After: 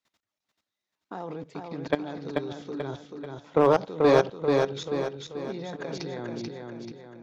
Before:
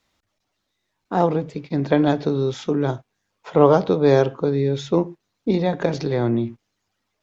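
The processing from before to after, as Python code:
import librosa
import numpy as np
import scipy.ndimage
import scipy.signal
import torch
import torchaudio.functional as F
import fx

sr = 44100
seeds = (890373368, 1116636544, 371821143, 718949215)

p1 = fx.highpass(x, sr, hz=270.0, slope=6)
p2 = fx.peak_eq(p1, sr, hz=560.0, db=-2.5, octaves=1.2)
p3 = fx.level_steps(p2, sr, step_db=18)
p4 = np.clip(10.0 ** (11.0 / 20.0) * p3, -1.0, 1.0) / 10.0 ** (11.0 / 20.0)
y = p4 + fx.echo_feedback(p4, sr, ms=436, feedback_pct=46, wet_db=-4, dry=0)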